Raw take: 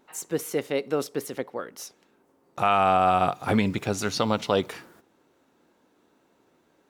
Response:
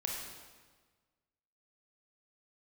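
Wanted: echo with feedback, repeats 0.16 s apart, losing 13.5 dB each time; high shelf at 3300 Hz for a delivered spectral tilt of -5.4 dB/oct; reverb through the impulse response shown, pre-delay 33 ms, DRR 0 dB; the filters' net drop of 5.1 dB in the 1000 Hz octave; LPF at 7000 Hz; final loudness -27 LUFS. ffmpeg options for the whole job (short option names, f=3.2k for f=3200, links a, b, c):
-filter_complex "[0:a]lowpass=7k,equalizer=f=1k:t=o:g=-7,highshelf=f=3.3k:g=-9,aecho=1:1:160|320:0.211|0.0444,asplit=2[a][b];[1:a]atrim=start_sample=2205,adelay=33[c];[b][c]afir=irnorm=-1:irlink=0,volume=-2.5dB[d];[a][d]amix=inputs=2:normalize=0,volume=-1.5dB"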